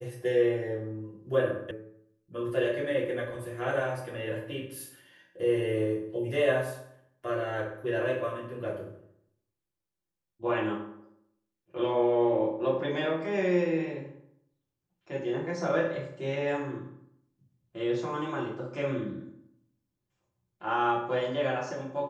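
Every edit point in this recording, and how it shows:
1.71 s: sound stops dead

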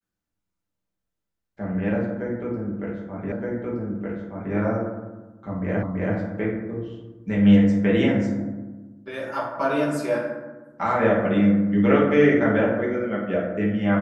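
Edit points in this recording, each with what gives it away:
3.32 s: repeat of the last 1.22 s
5.83 s: repeat of the last 0.33 s

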